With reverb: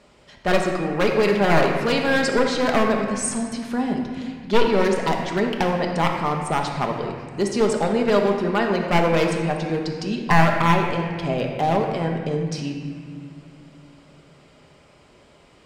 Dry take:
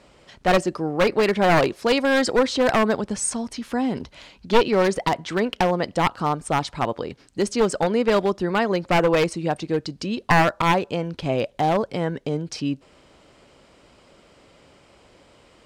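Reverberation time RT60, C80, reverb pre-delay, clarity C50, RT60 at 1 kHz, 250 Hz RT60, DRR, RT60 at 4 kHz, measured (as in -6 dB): 2.0 s, 4.5 dB, 5 ms, 3.5 dB, 2.0 s, 3.2 s, 1.0 dB, 1.6 s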